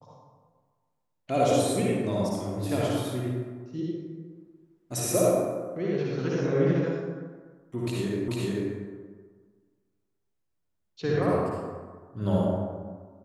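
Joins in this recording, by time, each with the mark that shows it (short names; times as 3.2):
8.28 repeat of the last 0.44 s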